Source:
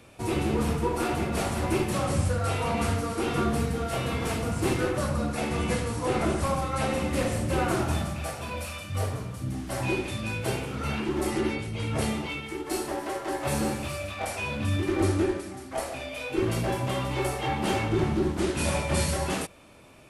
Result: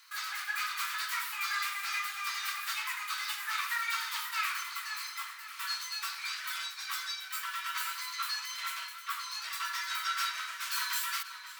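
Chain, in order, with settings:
Butterworth high-pass 670 Hz 48 dB per octave
wrong playback speed 45 rpm record played at 78 rpm
on a send: tape delay 533 ms, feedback 62%, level −11.5 dB, low-pass 5,900 Hz
on the sum: level −1.5 dB

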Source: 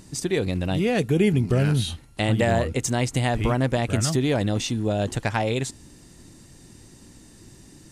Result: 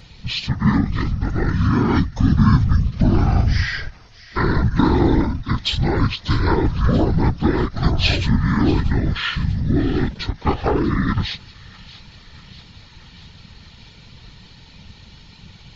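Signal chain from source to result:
random phases in short frames
change of speed 0.502×
delay with a high-pass on its return 638 ms, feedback 67%, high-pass 2,200 Hz, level −15 dB
every ending faded ahead of time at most 310 dB per second
level +5.5 dB

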